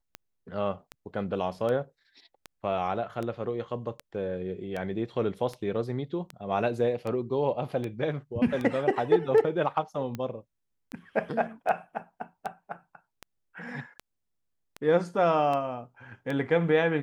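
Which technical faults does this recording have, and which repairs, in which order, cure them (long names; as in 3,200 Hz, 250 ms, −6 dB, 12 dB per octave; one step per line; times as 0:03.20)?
scratch tick 78 rpm −21 dBFS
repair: click removal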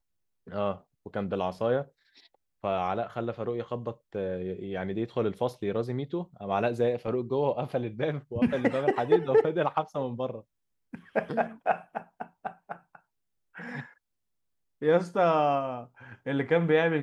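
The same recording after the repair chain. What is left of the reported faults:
none of them is left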